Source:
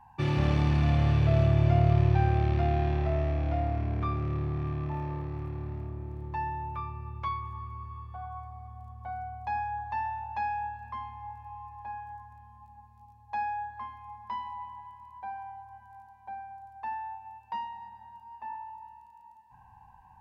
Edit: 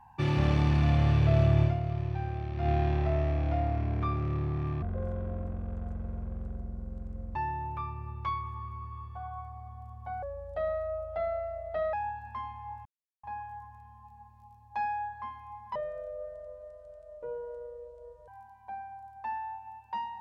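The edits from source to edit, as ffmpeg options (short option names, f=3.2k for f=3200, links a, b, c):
-filter_complex "[0:a]asplit=11[a][b][c][d][e][f][g][h][i][j][k];[a]atrim=end=1.81,asetpts=PTS-STARTPTS,afade=t=out:st=1.63:d=0.18:c=qua:silence=0.334965[l];[b]atrim=start=1.81:end=2.51,asetpts=PTS-STARTPTS,volume=-9.5dB[m];[c]atrim=start=2.51:end=4.824,asetpts=PTS-STARTPTS,afade=t=in:d=0.18:c=qua:silence=0.334965[n];[d]atrim=start=4.82:end=6.34,asetpts=PTS-STARTPTS,asetrate=26460,aresample=44100[o];[e]atrim=start=6.336:end=9.214[p];[f]atrim=start=9.21:end=10.51,asetpts=PTS-STARTPTS,asetrate=33516,aresample=44100,atrim=end_sample=75434,asetpts=PTS-STARTPTS[q];[g]atrim=start=10.506:end=11.43,asetpts=PTS-STARTPTS,afade=t=out:st=0.92:d=0.004:c=hsin[r];[h]atrim=start=11.43:end=11.81,asetpts=PTS-STARTPTS,volume=0[s];[i]atrim=start=11.81:end=14.334,asetpts=PTS-STARTPTS,afade=t=in:d=0.004:c=hsin[t];[j]atrim=start=14.33:end=15.87,asetpts=PTS-STARTPTS,asetrate=26901,aresample=44100,atrim=end_sample=111334,asetpts=PTS-STARTPTS[u];[k]atrim=start=15.866[v];[l][m][n]concat=n=3:v=0:a=1[w];[w][o]acrossfade=d=0.004:c1=hsin:c2=hsin[x];[x][p]acrossfade=d=0.004:c1=hsin:c2=hsin[y];[y][q]acrossfade=d=0.004:c1=hsin:c2=hsin[z];[r][s][t]concat=n=3:v=0:a=1[aa];[z][aa]acrossfade=d=0.004:c1=hsin:c2=hsin[ab];[ab][u]acrossfade=d=0.004:c1=hsin:c2=hsin[ac];[ac][v]acrossfade=d=0.004:c1=hsin:c2=hsin"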